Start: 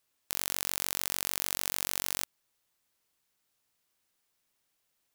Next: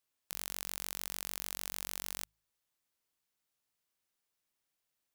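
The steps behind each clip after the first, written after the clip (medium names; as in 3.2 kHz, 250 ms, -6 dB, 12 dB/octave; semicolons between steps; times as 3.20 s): de-hum 53.11 Hz, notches 3; trim -7.5 dB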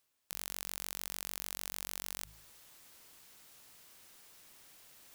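reverse; upward compressor, threshold -45 dBFS; reverse; peak limiter -17 dBFS, peak gain reduction 5.5 dB; trim +4.5 dB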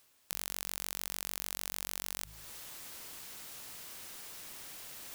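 compression 2:1, threshold -49 dBFS, peak gain reduction 9 dB; trim +11.5 dB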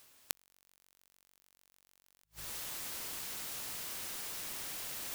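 inverted gate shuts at -14 dBFS, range -36 dB; trim +5.5 dB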